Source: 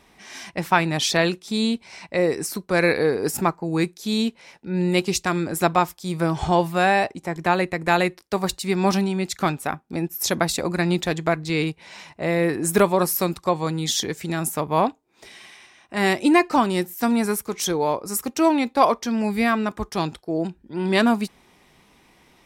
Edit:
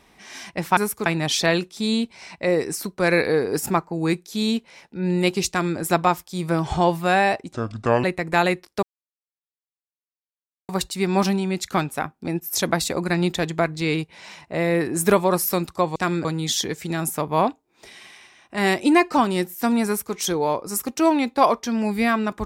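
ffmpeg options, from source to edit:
-filter_complex "[0:a]asplit=8[s0][s1][s2][s3][s4][s5][s6][s7];[s0]atrim=end=0.772[s8];[s1]atrim=start=17.248:end=17.542[s9];[s2]atrim=start=0.768:end=7.244[s10];[s3]atrim=start=7.24:end=7.58,asetpts=PTS-STARTPTS,asetrate=29547,aresample=44100,atrim=end_sample=22379,asetpts=PTS-STARTPTS[s11];[s4]atrim=start=7.576:end=8.37,asetpts=PTS-STARTPTS,afade=t=out:st=0.79:d=0.004:c=hsin,apad=pad_dur=1.86[s12];[s5]atrim=start=8.37:end=13.642,asetpts=PTS-STARTPTS,afade=t=in:d=0.004:c=hsin[s13];[s6]atrim=start=5.198:end=5.492[s14];[s7]atrim=start=13.638[s15];[s8][s9]acrossfade=d=0.004:c1=hsin:c2=hsin[s16];[s16][s10]acrossfade=d=0.004:c1=hsin:c2=hsin[s17];[s17][s11]acrossfade=d=0.004:c1=hsin:c2=hsin[s18];[s12][s13]concat=n=2:v=0:a=1[s19];[s18][s19]acrossfade=d=0.004:c1=hsin:c2=hsin[s20];[s20][s14]acrossfade=d=0.004:c1=hsin:c2=hsin[s21];[s21][s15]acrossfade=d=0.004:c1=hsin:c2=hsin"

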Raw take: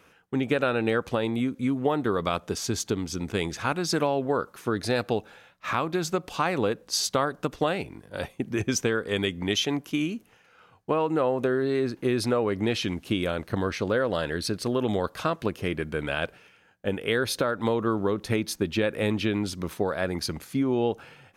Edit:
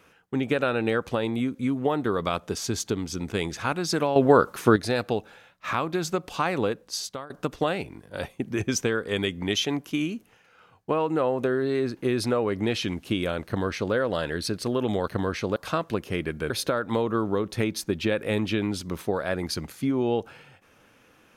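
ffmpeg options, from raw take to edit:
-filter_complex "[0:a]asplit=7[s0][s1][s2][s3][s4][s5][s6];[s0]atrim=end=4.162[s7];[s1]atrim=start=4.158:end=4.762,asetpts=PTS-STARTPTS,volume=2.82[s8];[s2]atrim=start=4.758:end=7.3,asetpts=PTS-STARTPTS,afade=t=out:st=1.892:d=0.65:silence=0.1[s9];[s3]atrim=start=7.3:end=15.082,asetpts=PTS-STARTPTS,afade=t=in:d=0.004:c=hsin:silence=0.1[s10];[s4]atrim=start=13.458:end=13.942[s11];[s5]atrim=start=15.078:end=16.022[s12];[s6]atrim=start=17.218[s13];[s7][s8]acrossfade=d=0.004:c1=hsin:c2=hsin[s14];[s9][s10]concat=n=2:v=0:a=1[s15];[s14][s15]acrossfade=d=0.004:c1=hsin:c2=hsin[s16];[s16][s11]acrossfade=d=0.004:c1=hsin:c2=hsin[s17];[s17][s12]acrossfade=d=0.004:c1=hsin:c2=hsin[s18];[s18][s13]acrossfade=d=0.004:c1=hsin:c2=hsin"

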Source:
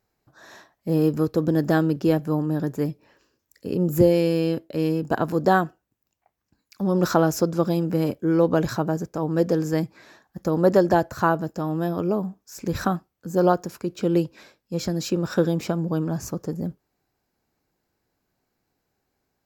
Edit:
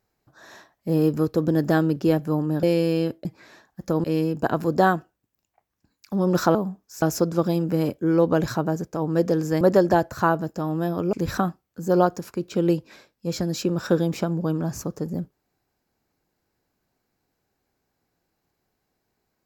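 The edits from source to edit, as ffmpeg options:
-filter_complex "[0:a]asplit=8[s0][s1][s2][s3][s4][s5][s6][s7];[s0]atrim=end=2.632[s8];[s1]atrim=start=4.098:end=4.722[s9];[s2]atrim=start=9.818:end=10.612[s10];[s3]atrim=start=4.718:end=7.232[s11];[s4]atrim=start=12.128:end=12.602[s12];[s5]atrim=start=7.228:end=9.822[s13];[s6]atrim=start=10.608:end=12.132[s14];[s7]atrim=start=12.598[s15];[s8][s9]acrossfade=d=0.004:c1=hsin:c2=hsin[s16];[s16][s10]acrossfade=d=0.004:c1=hsin:c2=hsin[s17];[s17][s11]acrossfade=d=0.004:c1=hsin:c2=hsin[s18];[s18][s12]acrossfade=d=0.004:c1=hsin:c2=hsin[s19];[s19][s13]acrossfade=d=0.004:c1=hsin:c2=hsin[s20];[s20][s14]acrossfade=d=0.004:c1=hsin:c2=hsin[s21];[s21][s15]acrossfade=d=0.004:c1=hsin:c2=hsin"

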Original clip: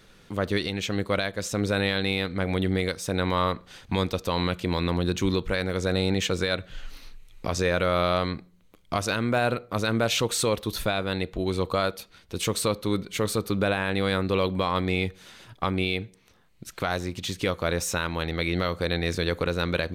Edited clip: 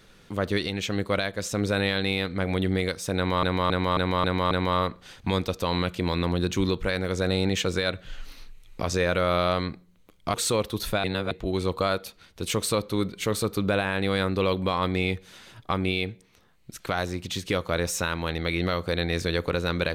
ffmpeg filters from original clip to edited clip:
-filter_complex "[0:a]asplit=9[s0][s1][s2][s3][s4][s5][s6][s7][s8];[s0]atrim=end=3.432[s9];[s1]atrim=start=3.158:end=3.432[s10];[s2]atrim=start=3.158:end=3.432[s11];[s3]atrim=start=3.158:end=3.432[s12];[s4]atrim=start=3.158:end=3.432[s13];[s5]atrim=start=3.158:end=8.992[s14];[s6]atrim=start=10.268:end=10.972[s15];[s7]atrim=start=10.968:end=11.242,asetpts=PTS-STARTPTS,areverse[s16];[s8]atrim=start=11.238[s17];[s9][s10]acrossfade=d=0.004:c1=hsin:c2=hsin[s18];[s18][s11]acrossfade=d=0.004:c1=hsin:c2=hsin[s19];[s19][s12]acrossfade=d=0.004:c1=hsin:c2=hsin[s20];[s20][s13]acrossfade=d=0.004:c1=hsin:c2=hsin[s21];[s21][s14]acrossfade=d=0.004:c1=hsin:c2=hsin[s22];[s22][s15]acrossfade=d=0.004:c1=hsin:c2=hsin[s23];[s23][s16]acrossfade=d=0.004:c1=hsin:c2=hsin[s24];[s24][s17]acrossfade=d=0.004:c1=hsin:c2=hsin"

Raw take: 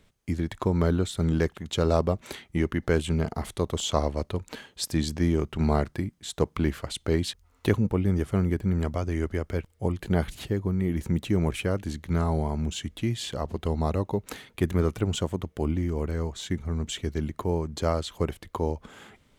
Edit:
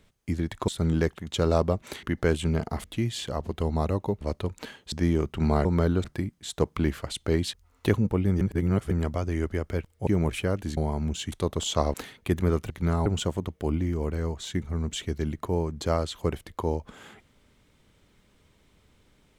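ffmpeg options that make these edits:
-filter_complex "[0:a]asplit=16[s0][s1][s2][s3][s4][s5][s6][s7][s8][s9][s10][s11][s12][s13][s14][s15];[s0]atrim=end=0.682[s16];[s1]atrim=start=1.068:end=2.422[s17];[s2]atrim=start=2.678:end=3.492[s18];[s3]atrim=start=12.888:end=14.262[s19];[s4]atrim=start=4.108:end=4.822[s20];[s5]atrim=start=5.108:end=5.842[s21];[s6]atrim=start=0.678:end=1.072[s22];[s7]atrim=start=5.838:end=8.212[s23];[s8]atrim=start=8.208:end=8.712,asetpts=PTS-STARTPTS,areverse[s24];[s9]atrim=start=8.708:end=9.872[s25];[s10]atrim=start=11.278:end=11.982[s26];[s11]atrim=start=12.338:end=12.892[s27];[s12]atrim=start=3.488:end=4.112[s28];[s13]atrim=start=14.258:end=15.022[s29];[s14]atrim=start=11.978:end=12.342[s30];[s15]atrim=start=15.018[s31];[s16][s17]acrossfade=d=0.004:c1=hsin:c2=hsin[s32];[s32][s18]acrossfade=d=0.004:c1=hsin:c2=hsin[s33];[s33][s19]acrossfade=d=0.004:c1=hsin:c2=hsin[s34];[s34][s20]acrossfade=d=0.004:c1=hsin:c2=hsin[s35];[s35][s21]acrossfade=d=0.004:c1=hsin:c2=hsin[s36];[s36][s22]acrossfade=d=0.004:c1=hsin:c2=hsin[s37];[s37][s23]acrossfade=d=0.004:c1=hsin:c2=hsin[s38];[s38][s24]acrossfade=d=0.004:c1=hsin:c2=hsin[s39];[s39][s25]acrossfade=d=0.004:c1=hsin:c2=hsin[s40];[s40][s26]acrossfade=d=0.004:c1=hsin:c2=hsin[s41];[s41][s27]acrossfade=d=0.004:c1=hsin:c2=hsin[s42];[s42][s28]acrossfade=d=0.004:c1=hsin:c2=hsin[s43];[s43][s29]acrossfade=d=0.004:c1=hsin:c2=hsin[s44];[s44][s30]acrossfade=d=0.004:c1=hsin:c2=hsin[s45];[s45][s31]acrossfade=d=0.004:c1=hsin:c2=hsin"

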